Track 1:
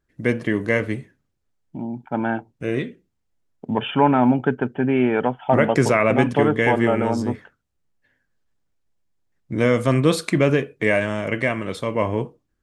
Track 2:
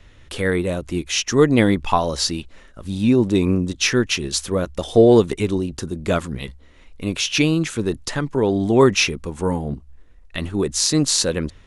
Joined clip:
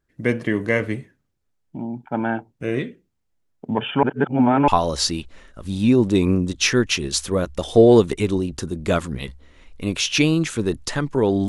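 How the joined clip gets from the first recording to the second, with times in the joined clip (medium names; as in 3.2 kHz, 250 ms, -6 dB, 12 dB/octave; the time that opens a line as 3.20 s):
track 1
4.03–4.68 s: reverse
4.68 s: go over to track 2 from 1.88 s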